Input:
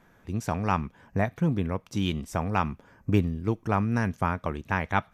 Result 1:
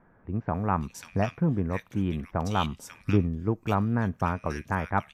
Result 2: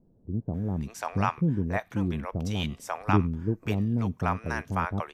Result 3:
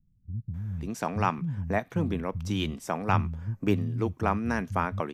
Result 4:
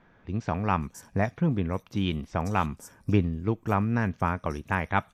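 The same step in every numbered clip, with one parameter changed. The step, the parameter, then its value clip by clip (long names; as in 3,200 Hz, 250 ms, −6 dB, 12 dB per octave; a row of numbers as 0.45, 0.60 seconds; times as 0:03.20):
multiband delay without the direct sound, split: 1,900, 520, 160, 5,000 Hertz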